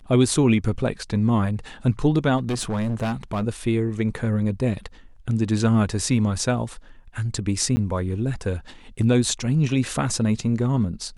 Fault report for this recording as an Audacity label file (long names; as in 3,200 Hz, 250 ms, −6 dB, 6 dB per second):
2.370000	3.440000	clipping −21 dBFS
7.760000	7.770000	drop-out 10 ms